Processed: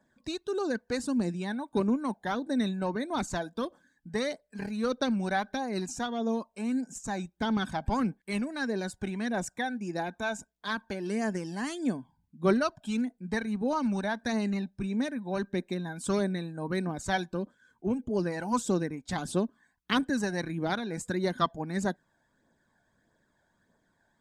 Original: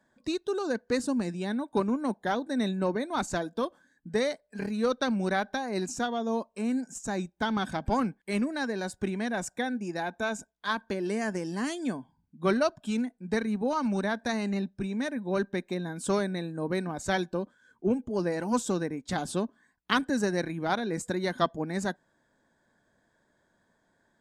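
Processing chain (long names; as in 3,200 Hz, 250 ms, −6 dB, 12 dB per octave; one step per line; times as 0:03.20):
flanger 1.6 Hz, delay 0.1 ms, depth 1.3 ms, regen +36%
level +2.5 dB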